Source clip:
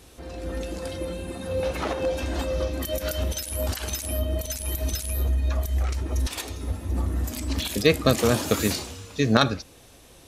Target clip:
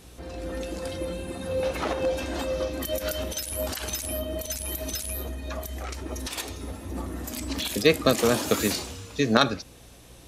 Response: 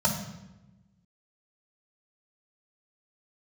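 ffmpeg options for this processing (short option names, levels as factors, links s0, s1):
-filter_complex "[0:a]acrossover=split=180[s0][s1];[s0]acompressor=threshold=0.0158:ratio=6[s2];[s2][s1]amix=inputs=2:normalize=0,aeval=exprs='val(0)+0.00251*(sin(2*PI*60*n/s)+sin(2*PI*2*60*n/s)/2+sin(2*PI*3*60*n/s)/3+sin(2*PI*4*60*n/s)/4+sin(2*PI*5*60*n/s)/5)':c=same"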